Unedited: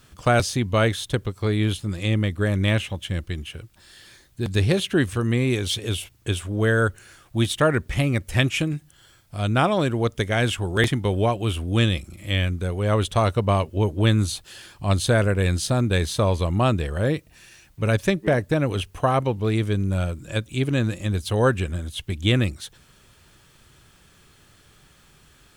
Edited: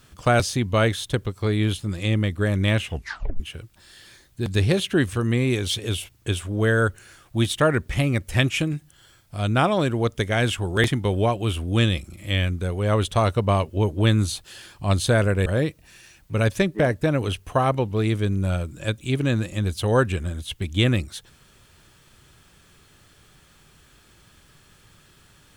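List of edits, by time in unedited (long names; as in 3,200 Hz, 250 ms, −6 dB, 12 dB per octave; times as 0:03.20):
0:02.86: tape stop 0.54 s
0:15.46–0:16.94: remove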